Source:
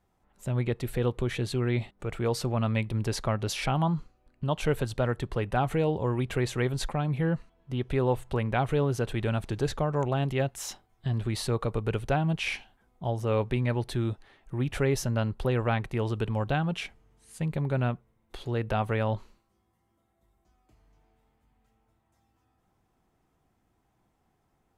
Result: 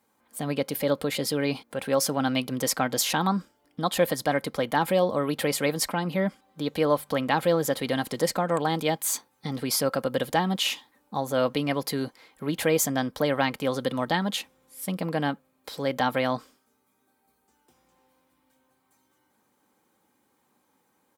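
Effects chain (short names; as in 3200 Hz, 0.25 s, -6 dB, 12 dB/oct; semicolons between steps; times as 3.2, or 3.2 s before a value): HPF 170 Hz 12 dB/oct; high shelf 5400 Hz +11 dB; notch 2300 Hz, Q 19; comb 4.4 ms, depth 35%; wide varispeed 1.17×; gain +3.5 dB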